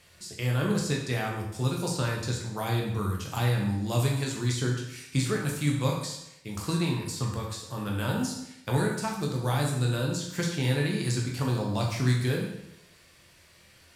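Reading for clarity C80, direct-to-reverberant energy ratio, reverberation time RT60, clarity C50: 6.5 dB, -1.5 dB, 0.85 s, 4.0 dB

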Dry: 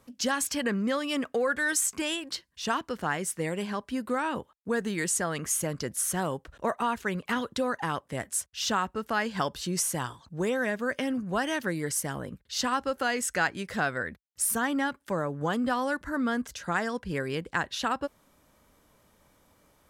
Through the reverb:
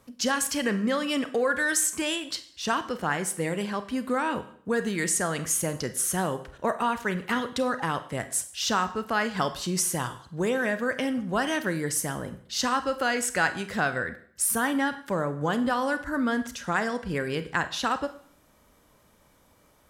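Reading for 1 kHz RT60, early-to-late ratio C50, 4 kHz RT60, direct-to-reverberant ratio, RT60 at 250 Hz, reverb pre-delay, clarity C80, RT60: 0.55 s, 14.0 dB, 0.55 s, 10.5 dB, 0.55 s, 31 ms, 17.0 dB, 0.55 s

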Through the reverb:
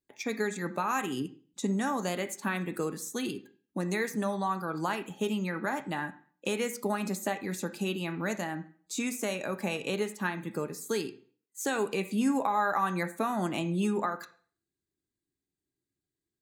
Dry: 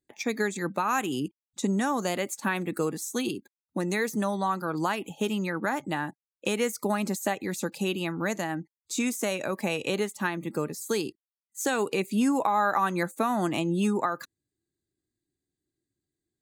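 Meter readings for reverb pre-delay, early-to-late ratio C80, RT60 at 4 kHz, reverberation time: 3 ms, 18.5 dB, 0.45 s, 0.45 s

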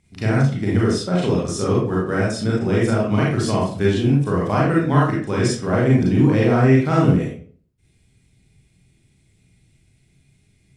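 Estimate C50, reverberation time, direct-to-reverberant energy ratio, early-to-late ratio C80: 0.5 dB, 0.45 s, -5.5 dB, 6.5 dB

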